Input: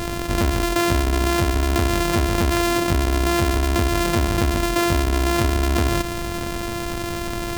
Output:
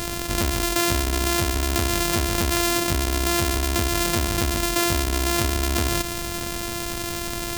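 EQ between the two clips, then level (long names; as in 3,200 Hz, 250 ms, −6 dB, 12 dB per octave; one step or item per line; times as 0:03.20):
high-shelf EQ 3,000 Hz +10.5 dB
−4.5 dB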